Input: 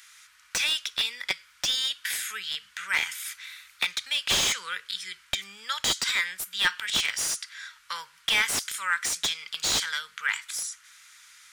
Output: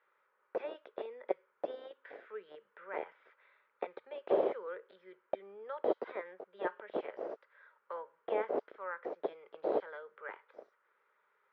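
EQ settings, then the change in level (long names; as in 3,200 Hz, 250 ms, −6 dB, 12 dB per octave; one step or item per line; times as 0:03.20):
flat-topped band-pass 490 Hz, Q 1.8
high-frequency loss of the air 260 metres
+12.5 dB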